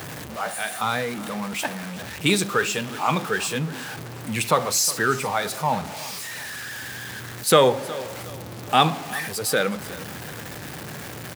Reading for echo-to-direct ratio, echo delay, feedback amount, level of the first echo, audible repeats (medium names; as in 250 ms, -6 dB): -18.0 dB, 364 ms, 38%, -18.5 dB, 2